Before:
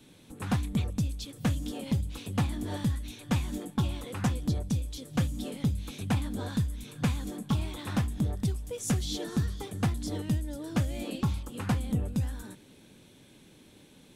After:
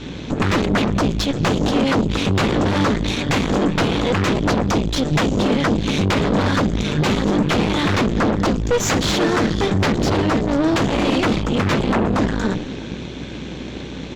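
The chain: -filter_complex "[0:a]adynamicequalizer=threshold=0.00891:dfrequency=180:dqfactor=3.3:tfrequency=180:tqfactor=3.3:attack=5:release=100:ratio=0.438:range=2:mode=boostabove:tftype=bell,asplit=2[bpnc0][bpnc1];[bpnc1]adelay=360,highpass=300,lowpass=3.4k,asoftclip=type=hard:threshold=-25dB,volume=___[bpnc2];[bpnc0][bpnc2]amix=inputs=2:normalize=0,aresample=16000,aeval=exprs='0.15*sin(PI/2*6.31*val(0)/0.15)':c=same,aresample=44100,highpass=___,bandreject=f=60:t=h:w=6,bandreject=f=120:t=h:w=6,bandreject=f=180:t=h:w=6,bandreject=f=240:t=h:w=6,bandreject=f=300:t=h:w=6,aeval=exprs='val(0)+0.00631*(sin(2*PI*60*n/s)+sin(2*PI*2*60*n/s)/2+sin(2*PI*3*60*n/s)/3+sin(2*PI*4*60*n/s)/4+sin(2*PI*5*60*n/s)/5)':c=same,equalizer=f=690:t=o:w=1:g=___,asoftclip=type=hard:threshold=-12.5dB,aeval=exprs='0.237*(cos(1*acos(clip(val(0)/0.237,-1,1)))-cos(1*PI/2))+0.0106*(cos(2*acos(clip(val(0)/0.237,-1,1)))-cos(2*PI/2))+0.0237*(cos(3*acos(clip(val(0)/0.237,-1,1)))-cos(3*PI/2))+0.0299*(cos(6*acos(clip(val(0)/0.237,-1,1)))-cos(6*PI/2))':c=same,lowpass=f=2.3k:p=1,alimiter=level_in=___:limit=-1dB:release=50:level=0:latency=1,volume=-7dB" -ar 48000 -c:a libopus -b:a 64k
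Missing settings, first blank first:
-21dB, 100, -3.5, 17dB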